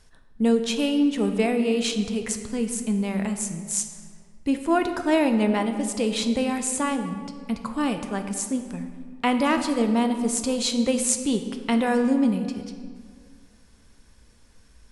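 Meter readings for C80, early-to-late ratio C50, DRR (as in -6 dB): 9.5 dB, 8.0 dB, 6.5 dB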